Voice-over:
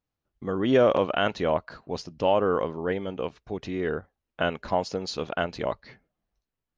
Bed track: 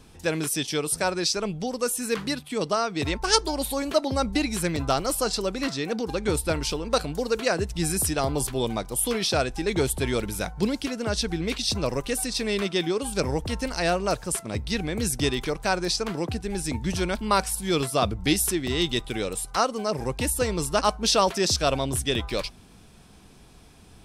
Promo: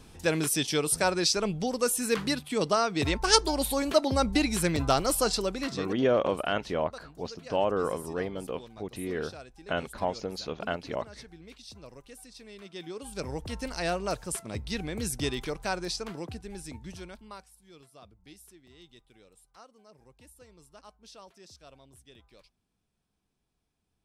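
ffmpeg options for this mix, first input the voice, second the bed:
-filter_complex "[0:a]adelay=5300,volume=0.596[s0];[1:a]volume=5.62,afade=t=out:st=5.26:d=0.86:silence=0.0891251,afade=t=in:st=12.6:d=1.12:silence=0.16788,afade=t=out:st=15.53:d=1.95:silence=0.0668344[s1];[s0][s1]amix=inputs=2:normalize=0"

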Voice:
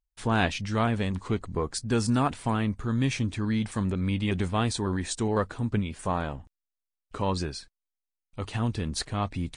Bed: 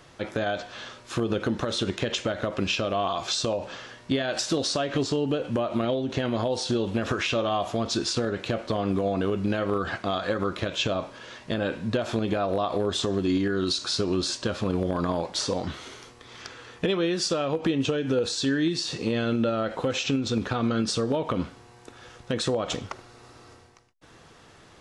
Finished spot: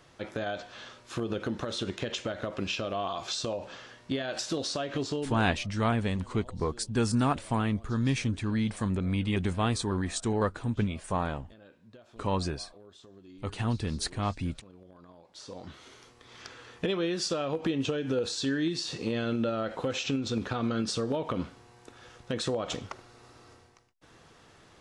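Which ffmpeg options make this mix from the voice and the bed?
-filter_complex "[0:a]adelay=5050,volume=0.841[s0];[1:a]volume=6.68,afade=t=out:st=5.15:d=0.42:silence=0.0891251,afade=t=in:st=15.24:d=1.29:silence=0.0749894[s1];[s0][s1]amix=inputs=2:normalize=0"

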